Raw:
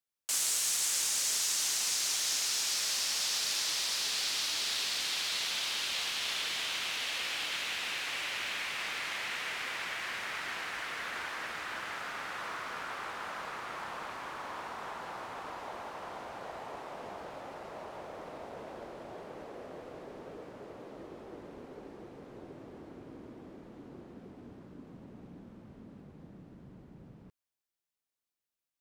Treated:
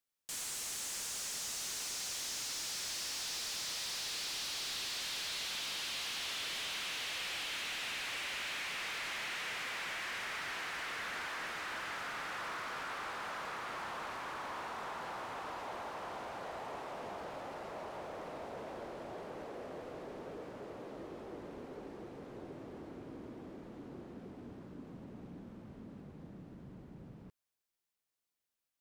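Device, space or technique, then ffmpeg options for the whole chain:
saturation between pre-emphasis and de-emphasis: -af "highshelf=f=10k:g=12,asoftclip=type=tanh:threshold=-36.5dB,highshelf=f=10k:g=-12,volume=1dB"

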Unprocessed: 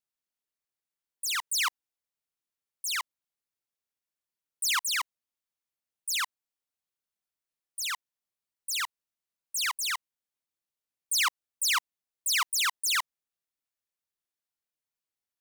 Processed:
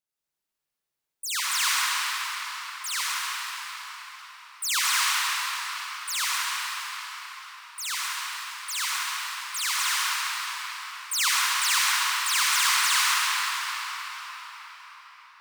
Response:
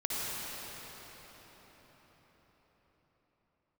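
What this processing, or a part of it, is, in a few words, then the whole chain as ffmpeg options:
cathedral: -filter_complex "[1:a]atrim=start_sample=2205[a];[0:a][a]afir=irnorm=-1:irlink=0"

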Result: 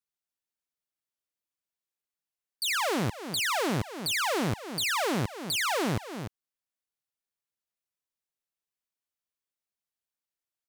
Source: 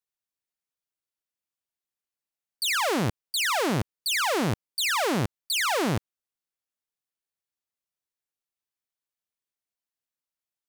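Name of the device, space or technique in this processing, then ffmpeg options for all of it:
ducked delay: -filter_complex "[0:a]asplit=3[a][b][c];[b]adelay=297,volume=-8dB[d];[c]apad=whole_len=484423[e];[d][e]sidechaincompress=threshold=-34dB:ratio=8:attack=7.9:release=252[f];[a][f]amix=inputs=2:normalize=0,volume=-3dB"

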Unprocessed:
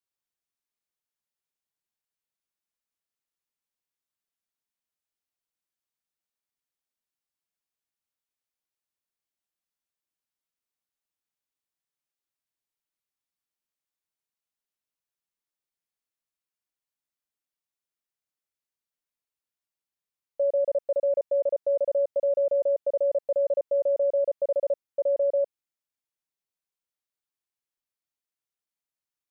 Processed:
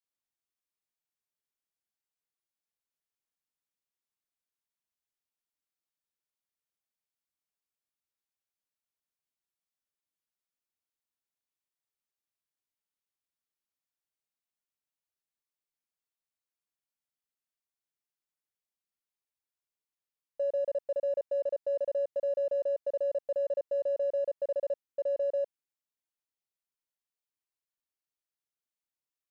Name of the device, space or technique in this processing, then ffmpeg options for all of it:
parallel distortion: -filter_complex "[0:a]asplit=2[a][b];[b]asoftclip=type=hard:threshold=-36.5dB,volume=-13.5dB[c];[a][c]amix=inputs=2:normalize=0,volume=-6.5dB"

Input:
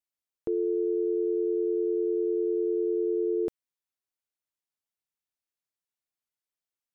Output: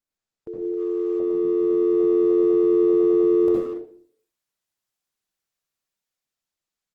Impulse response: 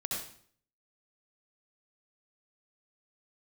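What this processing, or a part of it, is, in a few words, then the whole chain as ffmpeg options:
speakerphone in a meeting room: -filter_complex "[1:a]atrim=start_sample=2205[a];[0:a][a]afir=irnorm=-1:irlink=0,asplit=2[b][c];[c]adelay=180,highpass=300,lowpass=3.4k,asoftclip=type=hard:threshold=-25.5dB,volume=-8dB[d];[b][d]amix=inputs=2:normalize=0,dynaudnorm=f=350:g=9:m=9dB,volume=-3.5dB" -ar 48000 -c:a libopus -b:a 16k

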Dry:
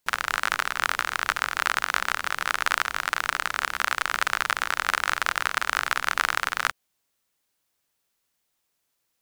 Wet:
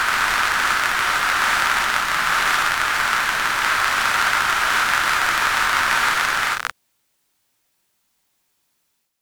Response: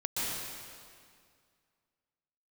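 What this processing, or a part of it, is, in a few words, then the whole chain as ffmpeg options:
reverse reverb: -filter_complex "[0:a]areverse[a];[1:a]atrim=start_sample=2205[b];[a][b]afir=irnorm=-1:irlink=0,areverse,bandreject=f=490:w=12,volume=1dB"

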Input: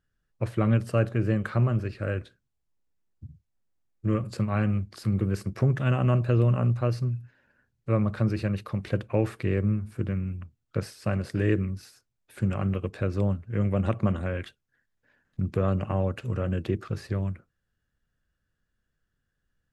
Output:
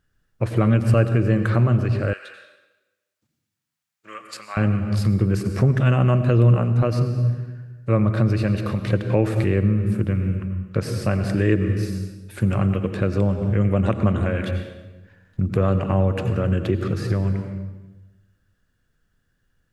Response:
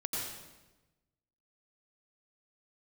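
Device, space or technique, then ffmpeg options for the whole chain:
ducked reverb: -filter_complex "[0:a]asplit=3[a][b][c];[1:a]atrim=start_sample=2205[d];[b][d]afir=irnorm=-1:irlink=0[e];[c]apad=whole_len=870052[f];[e][f]sidechaincompress=threshold=-29dB:ratio=8:attack=7:release=208,volume=-3dB[g];[a][g]amix=inputs=2:normalize=0,asettb=1/sr,asplit=3[h][i][j];[h]atrim=end=2.134[k];[i]atrim=start=2.13:end=4.57,asetpts=PTS-STARTPTS,afade=t=in:d=0.004:c=qsin,afade=t=out:st=2.436:d=0.004:c=qsin,highpass=1.3k[l];[j]atrim=start=4.566[m];[k][l]acrossfade=d=0.004:c1=hsin:c2=qsin[n];[n][m]acrossfade=d=0.004:c1=qsin:c2=hsin,volume=4dB"

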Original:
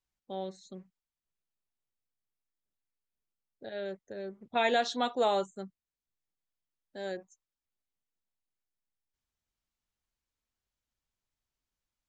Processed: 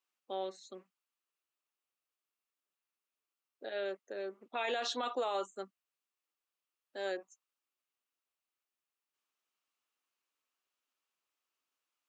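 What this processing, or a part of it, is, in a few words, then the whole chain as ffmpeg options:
laptop speaker: -af "highpass=f=290:w=0.5412,highpass=f=290:w=1.3066,equalizer=f=1.2k:t=o:w=0.45:g=8,equalizer=f=2.7k:t=o:w=0.4:g=7,alimiter=level_in=3dB:limit=-24dB:level=0:latency=1:release=44,volume=-3dB"

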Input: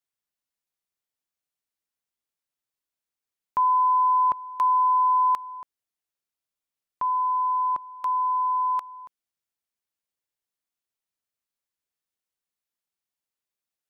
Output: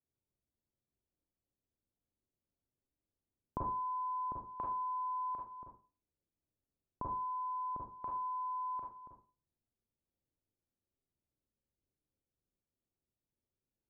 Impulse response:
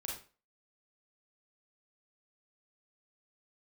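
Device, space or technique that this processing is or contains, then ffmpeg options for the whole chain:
television next door: -filter_complex "[0:a]acompressor=threshold=-28dB:ratio=4,lowpass=330[a];[1:a]atrim=start_sample=2205[b];[a][b]afir=irnorm=-1:irlink=0,volume=12.5dB"

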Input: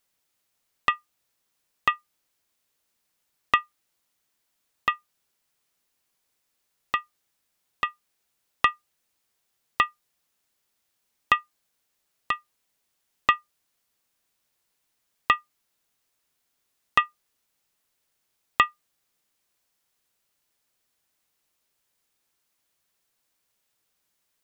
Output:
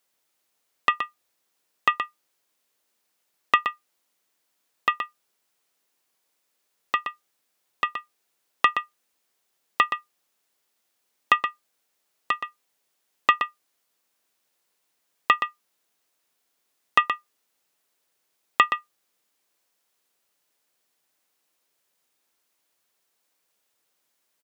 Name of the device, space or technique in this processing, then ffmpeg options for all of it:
filter by subtraction: -filter_complex "[0:a]asplit=2[a][b];[b]lowpass=400,volume=-1[c];[a][c]amix=inputs=2:normalize=0,asplit=2[d][e];[e]adelay=122.4,volume=-8dB,highshelf=f=4k:g=-2.76[f];[d][f]amix=inputs=2:normalize=0,volume=1dB"

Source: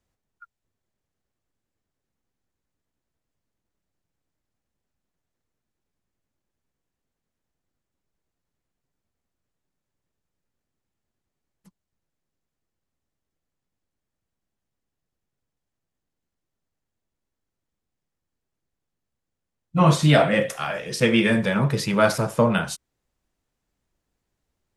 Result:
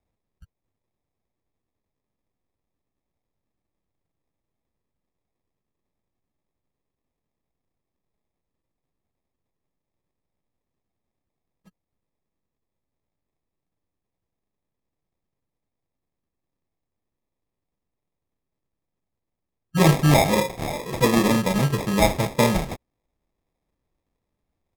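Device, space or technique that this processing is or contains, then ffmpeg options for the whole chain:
crushed at another speed: -af "asetrate=55125,aresample=44100,acrusher=samples=24:mix=1:aa=0.000001,asetrate=35280,aresample=44100"

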